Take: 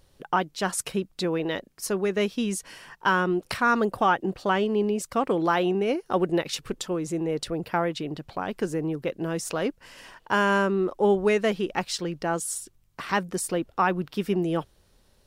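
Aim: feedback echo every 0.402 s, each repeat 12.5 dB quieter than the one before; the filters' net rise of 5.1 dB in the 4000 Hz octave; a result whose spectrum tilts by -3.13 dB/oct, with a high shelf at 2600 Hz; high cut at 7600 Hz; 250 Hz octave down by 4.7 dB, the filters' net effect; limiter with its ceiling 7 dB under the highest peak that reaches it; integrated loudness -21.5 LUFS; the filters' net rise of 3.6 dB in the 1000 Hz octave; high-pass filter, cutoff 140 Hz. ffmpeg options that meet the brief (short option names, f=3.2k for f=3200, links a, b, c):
-af "highpass=140,lowpass=7.6k,equalizer=f=250:t=o:g=-7,equalizer=f=1k:t=o:g=4,highshelf=f=2.6k:g=4.5,equalizer=f=4k:t=o:g=3,alimiter=limit=-13.5dB:level=0:latency=1,aecho=1:1:402|804|1206:0.237|0.0569|0.0137,volume=6dB"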